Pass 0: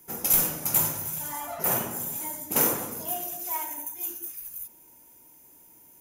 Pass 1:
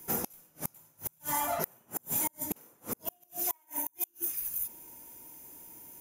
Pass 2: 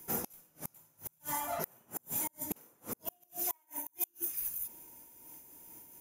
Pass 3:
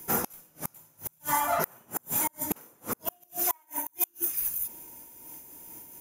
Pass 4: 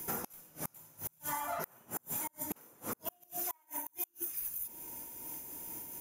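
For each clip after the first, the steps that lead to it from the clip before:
gate with flip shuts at −21 dBFS, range −38 dB; level +4 dB
amplitude modulation by smooth noise, depth 65%
dynamic equaliser 1,300 Hz, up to +7 dB, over −57 dBFS, Q 1.1; level +7 dB
downward compressor 3 to 1, threshold −42 dBFS, peak gain reduction 15.5 dB; level +2.5 dB

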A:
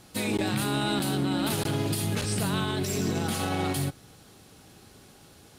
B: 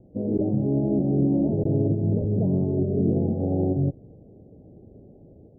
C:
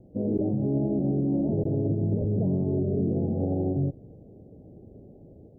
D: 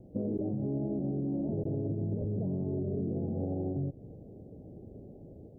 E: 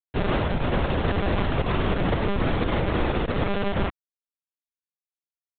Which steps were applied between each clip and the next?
Butterworth low-pass 630 Hz 48 dB per octave; automatic gain control gain up to 3 dB; level +3.5 dB
brickwall limiter −18.5 dBFS, peak gain reduction 7 dB
downward compressor, threshold −30 dBFS, peak gain reduction 8.5 dB
bit reduction 5 bits; one-pitch LPC vocoder at 8 kHz 200 Hz; level +8 dB

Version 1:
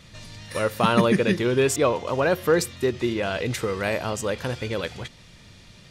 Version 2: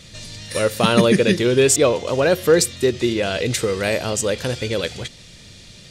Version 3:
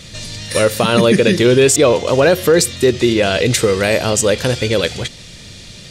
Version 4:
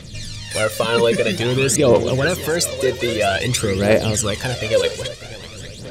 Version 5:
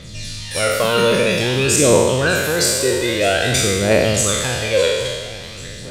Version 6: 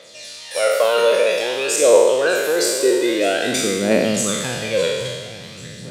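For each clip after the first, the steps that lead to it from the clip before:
octave-band graphic EQ 500/1,000/4,000/8,000 Hz +3/−6/+4/+7 dB; level +4 dB
brickwall limiter −10 dBFS, peak gain reduction 8.5 dB; level +7 dB
feedback echo with a long and a short gap by turns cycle 799 ms, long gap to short 3 to 1, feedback 37%, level −14 dB; phase shifter 0.51 Hz, delay 2.2 ms, feedback 65%; level −6.5 dB
peak hold with a decay on every bin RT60 1.37 s; level −2 dB
high-pass filter sweep 560 Hz → 150 Hz, 0:01.71–0:04.95; level −4 dB

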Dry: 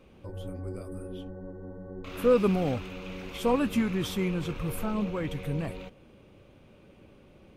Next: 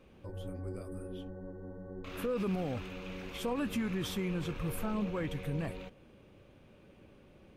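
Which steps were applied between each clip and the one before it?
parametric band 1,700 Hz +4 dB 0.21 octaves
brickwall limiter −22.5 dBFS, peak gain reduction 10.5 dB
level −3.5 dB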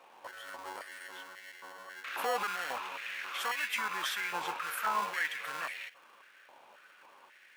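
in parallel at −5.5 dB: decimation without filtering 36×
on the sum: high-pass on a step sequencer 3.7 Hz 880–2,000 Hz
level +3.5 dB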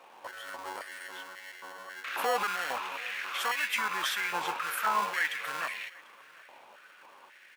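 single-tap delay 744 ms −23.5 dB
level +3.5 dB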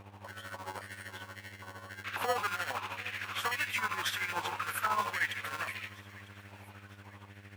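hum with harmonics 100 Hz, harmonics 28, −50 dBFS −7 dB per octave
amplitude tremolo 13 Hz, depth 65%
delay with a high-pass on its return 952 ms, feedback 50%, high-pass 1,900 Hz, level −19 dB

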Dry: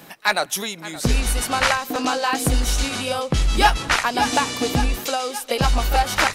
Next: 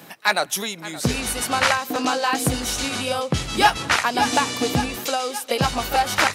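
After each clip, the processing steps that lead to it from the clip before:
high-pass filter 77 Hz 24 dB per octave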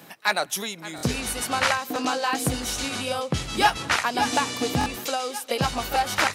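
buffer that repeats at 0:00.96/0:04.79, samples 1,024, times 2
level −3.5 dB

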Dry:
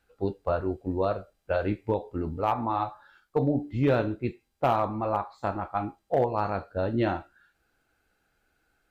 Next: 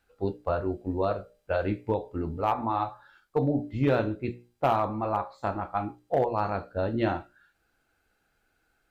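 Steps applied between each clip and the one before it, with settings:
mains-hum notches 60/120/180/240/300/360/420/480/540/600 Hz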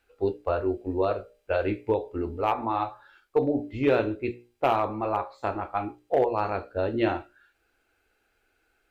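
graphic EQ with 15 bands 160 Hz −11 dB, 400 Hz +6 dB, 2,500 Hz +6 dB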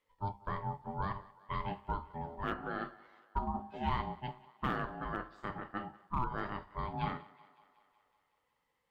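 ring modulation 500 Hz
feedback echo with a high-pass in the loop 186 ms, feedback 67%, high-pass 250 Hz, level −21 dB
level −8.5 dB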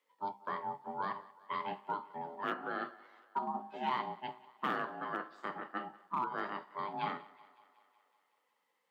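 Bessel high-pass filter 300 Hz, order 8
level +1.5 dB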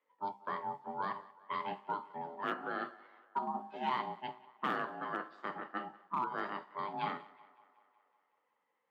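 low-pass that shuts in the quiet parts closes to 2,000 Hz, open at −33.5 dBFS

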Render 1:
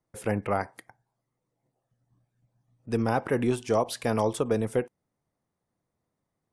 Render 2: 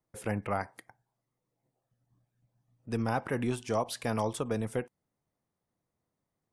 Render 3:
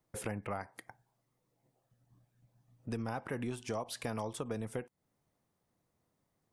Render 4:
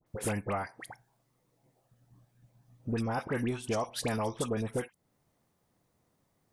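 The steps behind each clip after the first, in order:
dynamic equaliser 410 Hz, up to −5 dB, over −36 dBFS, Q 1.2; level −3 dB
downward compressor 3 to 1, threshold −43 dBFS, peak gain reduction 13.5 dB; level +4.5 dB
all-pass dispersion highs, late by 65 ms, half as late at 1,600 Hz; level +6 dB

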